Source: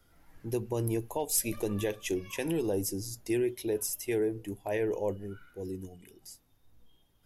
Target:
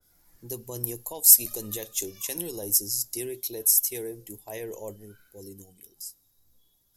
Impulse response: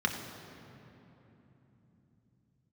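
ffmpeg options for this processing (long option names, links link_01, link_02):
-filter_complex "[0:a]asetrate=45938,aresample=44100,asplit=2[link_01][link_02];[link_02]aderivative[link_03];[1:a]atrim=start_sample=2205[link_04];[link_03][link_04]afir=irnorm=-1:irlink=0,volume=-26.5dB[link_05];[link_01][link_05]amix=inputs=2:normalize=0,aexciter=amount=6.3:drive=2.6:freq=4000,adynamicequalizer=threshold=0.0112:dfrequency=2400:dqfactor=0.7:tfrequency=2400:tqfactor=0.7:attack=5:release=100:ratio=0.375:range=2.5:mode=boostabove:tftype=highshelf,volume=-6.5dB"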